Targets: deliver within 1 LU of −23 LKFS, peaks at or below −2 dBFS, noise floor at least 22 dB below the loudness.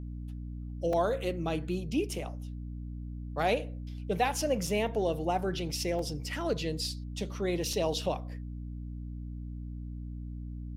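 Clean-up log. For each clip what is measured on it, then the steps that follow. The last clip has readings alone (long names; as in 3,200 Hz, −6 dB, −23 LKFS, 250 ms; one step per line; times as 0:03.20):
number of dropouts 4; longest dropout 3.2 ms; mains hum 60 Hz; hum harmonics up to 300 Hz; level of the hum −37 dBFS; integrated loudness −33.5 LKFS; sample peak −14.0 dBFS; target loudness −23.0 LKFS
→ repair the gap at 0:00.93/0:04.67/0:05.99/0:07.73, 3.2 ms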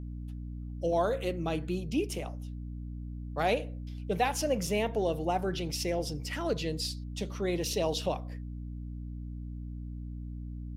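number of dropouts 0; mains hum 60 Hz; hum harmonics up to 300 Hz; level of the hum −37 dBFS
→ mains-hum notches 60/120/180/240/300 Hz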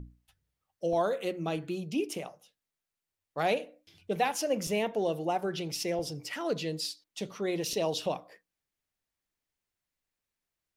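mains hum none found; integrated loudness −32.5 LKFS; sample peak −14.5 dBFS; target loudness −23.0 LKFS
→ level +9.5 dB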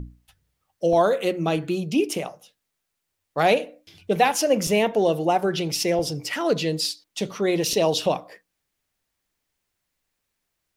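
integrated loudness −23.0 LKFS; sample peak −5.0 dBFS; background noise floor −79 dBFS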